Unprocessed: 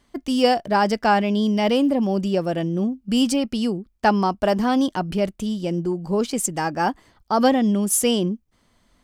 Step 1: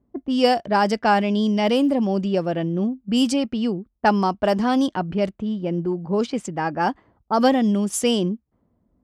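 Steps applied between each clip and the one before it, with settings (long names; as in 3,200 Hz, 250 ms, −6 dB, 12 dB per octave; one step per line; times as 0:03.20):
low-pass that shuts in the quiet parts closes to 430 Hz, open at −14.5 dBFS
high-pass filter 55 Hz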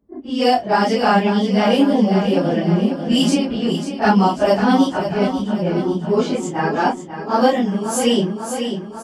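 random phases in long frames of 100 ms
repeating echo 543 ms, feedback 53%, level −9 dB
automatic gain control gain up to 5 dB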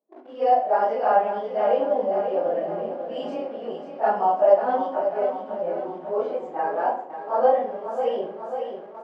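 in parallel at −7 dB: bit reduction 5 bits
on the sum: four-pole ladder band-pass 700 Hz, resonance 50%
rectangular room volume 96 cubic metres, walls mixed, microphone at 0.54 metres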